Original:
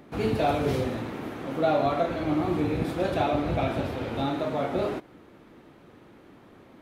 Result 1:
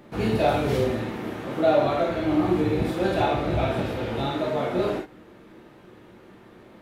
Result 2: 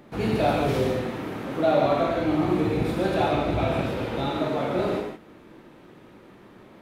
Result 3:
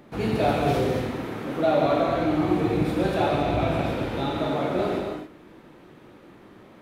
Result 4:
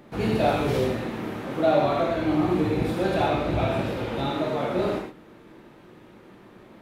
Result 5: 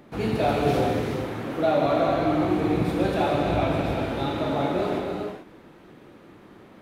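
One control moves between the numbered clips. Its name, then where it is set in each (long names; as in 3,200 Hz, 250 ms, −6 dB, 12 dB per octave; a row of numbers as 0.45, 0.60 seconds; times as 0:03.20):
reverb whose tail is shaped and stops, gate: 80, 200, 300, 140, 460 milliseconds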